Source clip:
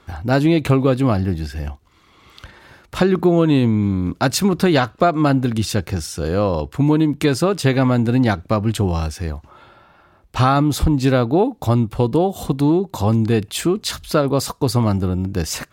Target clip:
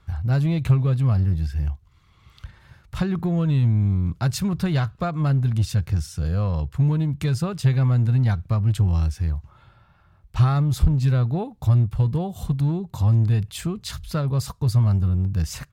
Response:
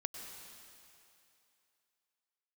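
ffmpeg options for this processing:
-filter_complex "[0:a]firequalizer=gain_entry='entry(130,0);entry(270,-19);entry(680,-16);entry(1100,-13)':delay=0.05:min_phase=1,asplit=2[s0][s1];[s1]asoftclip=type=hard:threshold=0.0668,volume=0.501[s2];[s0][s2]amix=inputs=2:normalize=0"

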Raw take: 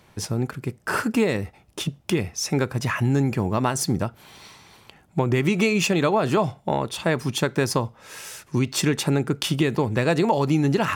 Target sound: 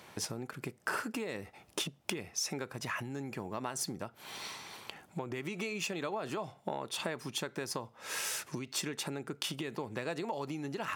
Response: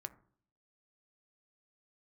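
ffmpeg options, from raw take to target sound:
-af "acompressor=threshold=0.02:ratio=16,highpass=f=350:p=1,volume=1.41"

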